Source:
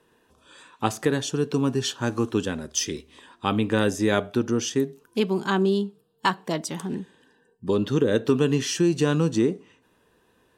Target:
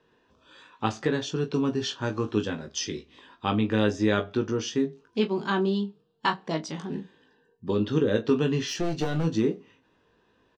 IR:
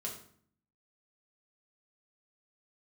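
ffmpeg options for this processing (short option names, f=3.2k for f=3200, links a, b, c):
-filter_complex "[0:a]lowpass=f=5.6k:w=0.5412,lowpass=f=5.6k:w=1.3066,asplit=3[a][b][c];[a]afade=t=out:st=8.66:d=0.02[d];[b]aeval=exprs='clip(val(0),-1,0.0562)':c=same,afade=t=in:st=8.66:d=0.02,afade=t=out:st=9.23:d=0.02[e];[c]afade=t=in:st=9.23:d=0.02[f];[d][e][f]amix=inputs=3:normalize=0,aecho=1:1:19|41:0.531|0.178,volume=-3.5dB"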